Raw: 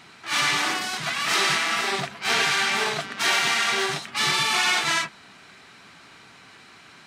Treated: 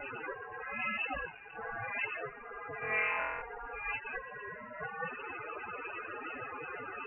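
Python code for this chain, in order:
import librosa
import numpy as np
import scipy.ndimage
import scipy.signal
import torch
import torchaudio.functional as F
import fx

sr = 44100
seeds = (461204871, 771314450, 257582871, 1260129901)

y = fx.delta_mod(x, sr, bps=32000, step_db=-24.5)
y = fx.low_shelf(y, sr, hz=440.0, db=9.5, at=(0.73, 1.54), fade=0.02)
y = fx.over_compress(y, sr, threshold_db=-27.0, ratio=-0.5)
y = fx.spec_topn(y, sr, count=16)
y = np.sign(y) * np.maximum(np.abs(y) - 10.0 ** (-46.0 / 20.0), 0.0)
y = fx.room_flutter(y, sr, wall_m=4.0, rt60_s=1.1, at=(2.81, 3.41), fade=0.02)
y = fx.freq_invert(y, sr, carrier_hz=2800)
y = F.gain(torch.from_numpy(y), -5.5).numpy()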